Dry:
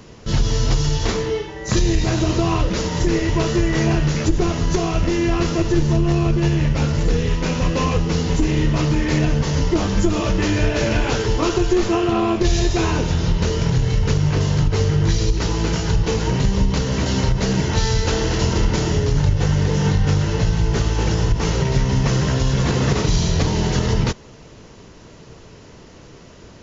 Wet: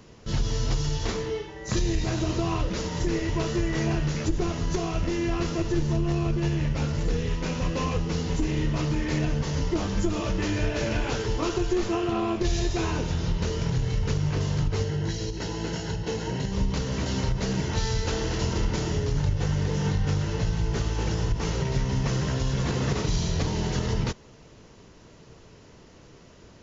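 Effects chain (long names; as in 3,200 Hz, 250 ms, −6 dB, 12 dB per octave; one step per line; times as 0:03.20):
0:14.83–0:16.52: notch comb filter 1,200 Hz
level −8 dB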